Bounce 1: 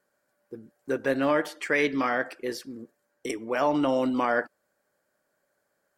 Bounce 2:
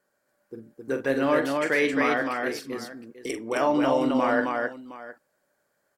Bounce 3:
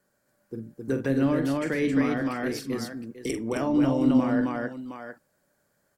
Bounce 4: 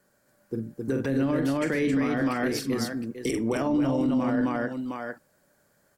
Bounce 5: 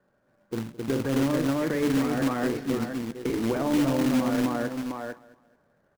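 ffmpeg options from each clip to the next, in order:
-af "aecho=1:1:44|265|714:0.376|0.708|0.158"
-filter_complex "[0:a]bass=f=250:g=12,treble=f=4000:g=4,bandreject=f=50:t=h:w=6,bandreject=f=100:t=h:w=6,bandreject=f=150:t=h:w=6,acrossover=split=360[s0][s1];[s1]acompressor=threshold=0.0316:ratio=6[s2];[s0][s2]amix=inputs=2:normalize=0"
-af "alimiter=limit=0.075:level=0:latency=1:release=67,volume=1.78"
-filter_complex "[0:a]lowpass=1500,acrossover=split=520[s0][s1];[s0]acrusher=bits=2:mode=log:mix=0:aa=0.000001[s2];[s2][s1]amix=inputs=2:normalize=0,aecho=1:1:215|430|645:0.106|0.035|0.0115"

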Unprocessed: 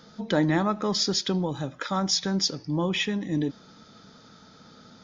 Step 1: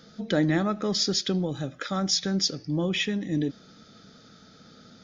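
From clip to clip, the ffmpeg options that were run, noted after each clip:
-af "equalizer=f=960:t=o:w=0.35:g=-14"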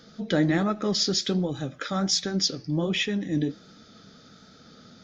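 -af "flanger=delay=2.6:depth=9.8:regen=-63:speed=1.3:shape=sinusoidal,volume=1.78"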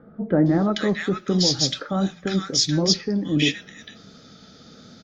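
-filter_complex "[0:a]acrossover=split=1400[s0][s1];[s1]adelay=460[s2];[s0][s2]amix=inputs=2:normalize=0,volume=1.68"

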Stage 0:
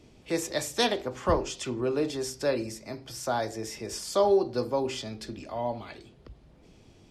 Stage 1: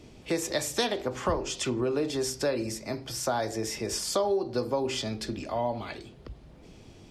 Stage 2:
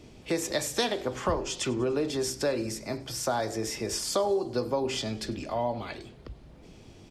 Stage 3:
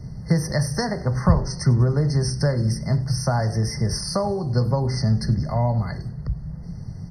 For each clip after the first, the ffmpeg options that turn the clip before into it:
-af "acompressor=threshold=0.0316:ratio=4,volume=1.78"
-filter_complex "[0:a]asplit=6[s0][s1][s2][s3][s4][s5];[s1]adelay=98,afreqshift=-58,volume=0.0794[s6];[s2]adelay=196,afreqshift=-116,volume=0.0484[s7];[s3]adelay=294,afreqshift=-174,volume=0.0295[s8];[s4]adelay=392,afreqshift=-232,volume=0.018[s9];[s5]adelay=490,afreqshift=-290,volume=0.011[s10];[s0][s6][s7][s8][s9][s10]amix=inputs=6:normalize=0"
-af "lowshelf=f=220:t=q:w=3:g=11.5,afftfilt=real='re*eq(mod(floor(b*sr/1024/2100),2),0)':imag='im*eq(mod(floor(b*sr/1024/2100),2),0)':win_size=1024:overlap=0.75,volume=1.68"

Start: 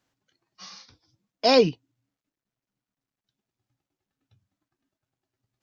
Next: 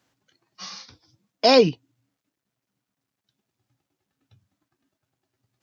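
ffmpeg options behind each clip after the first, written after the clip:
-filter_complex "[0:a]highpass=68,asplit=2[s0][s1];[s1]acompressor=threshold=0.0631:ratio=6,volume=1.06[s2];[s0][s2]amix=inputs=2:normalize=0"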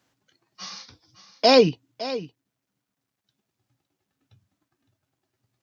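-af "aecho=1:1:561:0.188"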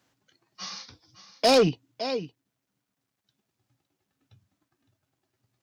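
-af "asoftclip=type=tanh:threshold=0.2"

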